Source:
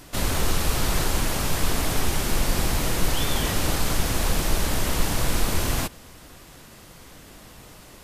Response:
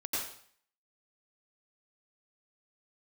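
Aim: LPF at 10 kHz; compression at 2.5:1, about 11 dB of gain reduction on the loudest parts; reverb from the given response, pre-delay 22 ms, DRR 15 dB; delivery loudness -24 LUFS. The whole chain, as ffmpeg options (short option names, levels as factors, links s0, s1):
-filter_complex "[0:a]lowpass=10000,acompressor=threshold=0.0251:ratio=2.5,asplit=2[s0][s1];[1:a]atrim=start_sample=2205,adelay=22[s2];[s1][s2]afir=irnorm=-1:irlink=0,volume=0.106[s3];[s0][s3]amix=inputs=2:normalize=0,volume=3.35"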